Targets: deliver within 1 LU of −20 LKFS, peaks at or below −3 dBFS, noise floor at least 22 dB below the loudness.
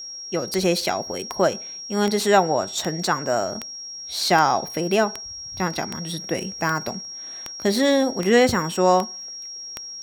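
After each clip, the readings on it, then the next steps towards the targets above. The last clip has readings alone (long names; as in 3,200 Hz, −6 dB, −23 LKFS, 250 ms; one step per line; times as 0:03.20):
number of clicks 13; interfering tone 5,600 Hz; level of the tone −33 dBFS; integrated loudness −22.5 LKFS; sample peak −4.0 dBFS; target loudness −20.0 LKFS
→ click removal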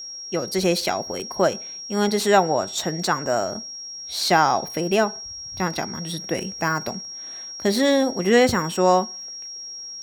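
number of clicks 0; interfering tone 5,600 Hz; level of the tone −33 dBFS
→ notch filter 5,600 Hz, Q 30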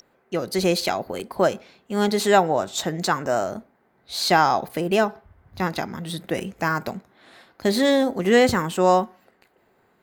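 interfering tone none found; integrated loudness −22.5 LKFS; sample peak −4.0 dBFS; target loudness −20.0 LKFS
→ level +2.5 dB
brickwall limiter −3 dBFS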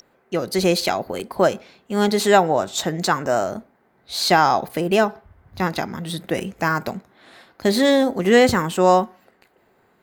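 integrated loudness −20.0 LKFS; sample peak −3.0 dBFS; background noise floor −61 dBFS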